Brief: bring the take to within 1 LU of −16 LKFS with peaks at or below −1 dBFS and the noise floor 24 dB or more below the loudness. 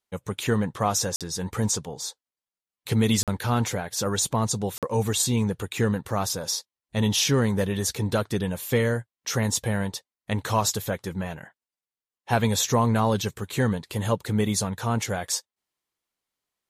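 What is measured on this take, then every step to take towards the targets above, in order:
number of dropouts 3; longest dropout 47 ms; integrated loudness −26.0 LKFS; sample peak −9.0 dBFS; target loudness −16.0 LKFS
→ repair the gap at 0:01.16/0:03.23/0:04.78, 47 ms
level +10 dB
brickwall limiter −1 dBFS

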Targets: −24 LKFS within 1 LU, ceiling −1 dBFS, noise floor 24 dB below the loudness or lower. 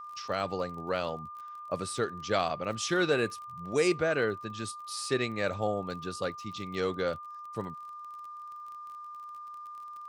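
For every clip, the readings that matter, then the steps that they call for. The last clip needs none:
crackle rate 30 per second; interfering tone 1,200 Hz; level of the tone −41 dBFS; integrated loudness −32.0 LKFS; sample peak −14.0 dBFS; target loudness −24.0 LKFS
→ click removal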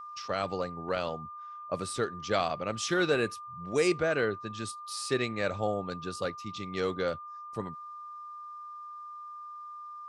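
crackle rate 0 per second; interfering tone 1,200 Hz; level of the tone −41 dBFS
→ notch filter 1,200 Hz, Q 30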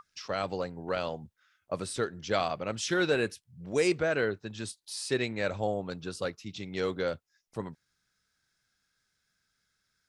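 interfering tone none found; integrated loudness −32.5 LKFS; sample peak −14.0 dBFS; target loudness −24.0 LKFS
→ level +8.5 dB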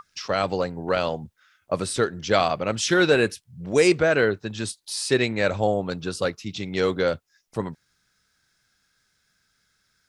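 integrated loudness −24.0 LKFS; sample peak −5.5 dBFS; background noise floor −70 dBFS

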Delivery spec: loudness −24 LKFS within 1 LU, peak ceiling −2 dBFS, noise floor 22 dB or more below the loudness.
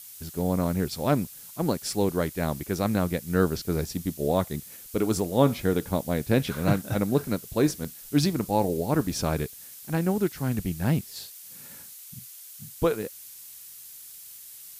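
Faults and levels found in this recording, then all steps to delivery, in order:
number of dropouts 1; longest dropout 4.7 ms; background noise floor −45 dBFS; target noise floor −49 dBFS; integrated loudness −27.0 LKFS; sample peak −6.5 dBFS; target loudness −24.0 LKFS
→ repair the gap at 0:07.84, 4.7 ms
broadband denoise 6 dB, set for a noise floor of −45 dBFS
level +3 dB

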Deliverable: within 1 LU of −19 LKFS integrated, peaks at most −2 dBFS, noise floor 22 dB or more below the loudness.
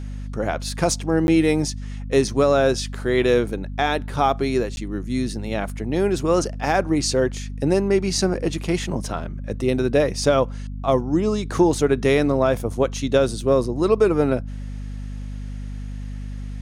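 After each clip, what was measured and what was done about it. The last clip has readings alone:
number of dropouts 2; longest dropout 11 ms; mains hum 50 Hz; hum harmonics up to 250 Hz; level of the hum −28 dBFS; integrated loudness −21.5 LKFS; sample peak −5.5 dBFS; target loudness −19.0 LKFS
→ repair the gap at 0:01.27/0:04.76, 11 ms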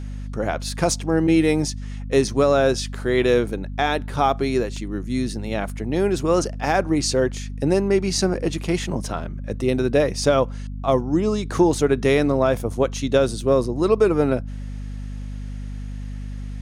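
number of dropouts 0; mains hum 50 Hz; hum harmonics up to 250 Hz; level of the hum −28 dBFS
→ mains-hum notches 50/100/150/200/250 Hz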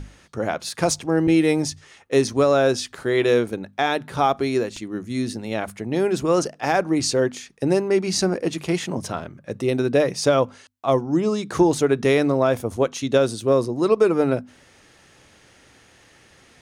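mains hum none found; integrated loudness −21.5 LKFS; sample peak −6.0 dBFS; target loudness −19.0 LKFS
→ level +2.5 dB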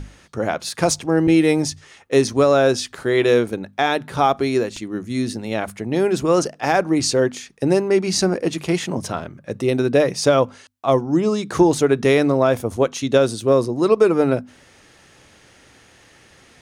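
integrated loudness −19.0 LKFS; sample peak −3.5 dBFS; background noise floor −51 dBFS

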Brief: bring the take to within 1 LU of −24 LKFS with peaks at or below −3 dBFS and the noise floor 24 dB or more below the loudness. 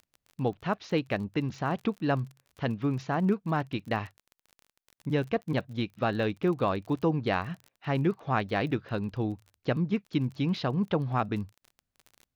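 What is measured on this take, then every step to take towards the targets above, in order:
crackle rate 28 per second; integrated loudness −30.5 LKFS; sample peak −13.0 dBFS; target loudness −24.0 LKFS
→ click removal
level +6.5 dB

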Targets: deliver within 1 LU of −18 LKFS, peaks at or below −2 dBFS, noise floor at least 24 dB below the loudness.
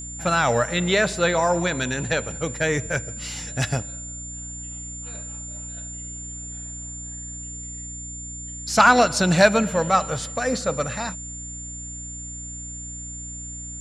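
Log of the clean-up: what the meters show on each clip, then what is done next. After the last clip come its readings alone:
mains hum 60 Hz; hum harmonics up to 300 Hz; level of the hum −37 dBFS; interfering tone 7,200 Hz; level of the tone −34 dBFS; integrated loudness −24.0 LKFS; sample peak −1.5 dBFS; target loudness −18.0 LKFS
→ hum removal 60 Hz, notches 5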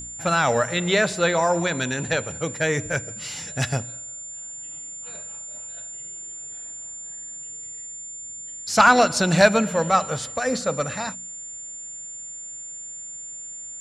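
mains hum none found; interfering tone 7,200 Hz; level of the tone −34 dBFS
→ notch filter 7,200 Hz, Q 30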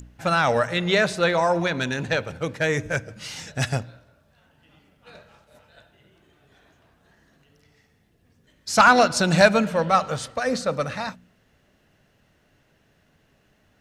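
interfering tone none found; integrated loudness −21.5 LKFS; sample peak −2.0 dBFS; target loudness −18.0 LKFS
→ level +3.5 dB
brickwall limiter −2 dBFS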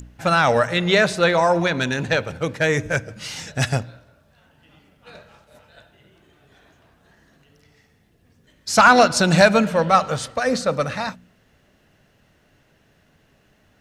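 integrated loudness −18.5 LKFS; sample peak −2.0 dBFS; background noise floor −60 dBFS

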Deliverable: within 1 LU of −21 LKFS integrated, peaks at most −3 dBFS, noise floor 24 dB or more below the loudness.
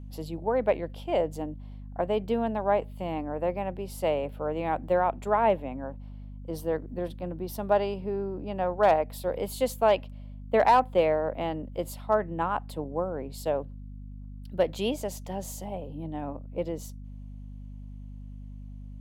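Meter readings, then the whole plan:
mains hum 50 Hz; hum harmonics up to 250 Hz; level of the hum −39 dBFS; integrated loudness −29.0 LKFS; sample peak −12.0 dBFS; target loudness −21.0 LKFS
→ hum removal 50 Hz, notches 5
level +8 dB

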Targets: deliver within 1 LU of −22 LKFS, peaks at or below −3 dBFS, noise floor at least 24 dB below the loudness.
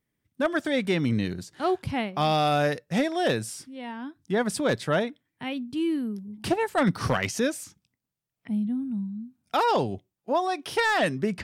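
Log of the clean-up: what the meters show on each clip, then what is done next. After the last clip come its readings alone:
share of clipped samples 0.2%; peaks flattened at −15.5 dBFS; integrated loudness −27.0 LKFS; sample peak −15.5 dBFS; target loudness −22.0 LKFS
→ clipped peaks rebuilt −15.5 dBFS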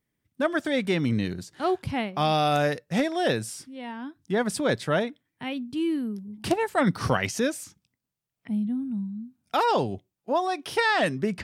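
share of clipped samples 0.0%; integrated loudness −26.5 LKFS; sample peak −6.5 dBFS; target loudness −22.0 LKFS
→ level +4.5 dB
brickwall limiter −3 dBFS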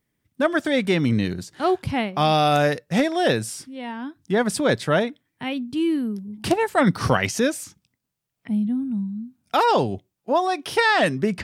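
integrated loudness −22.0 LKFS; sample peak −3.0 dBFS; background noise floor −80 dBFS

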